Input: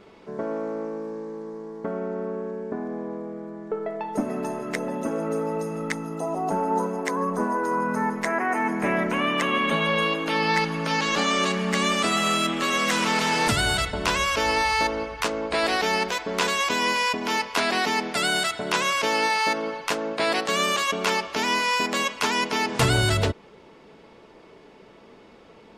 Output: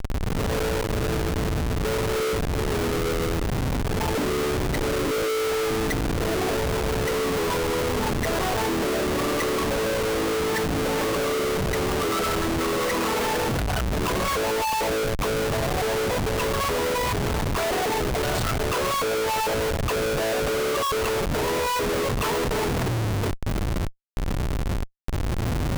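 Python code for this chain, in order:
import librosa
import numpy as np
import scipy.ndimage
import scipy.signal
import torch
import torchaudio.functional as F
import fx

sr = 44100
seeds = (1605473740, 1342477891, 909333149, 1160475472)

y = fx.envelope_sharpen(x, sr, power=3.0)
y = fx.dmg_wind(y, sr, seeds[0], corner_hz=120.0, level_db=-29.0)
y = fx.schmitt(y, sr, flips_db=-34.0)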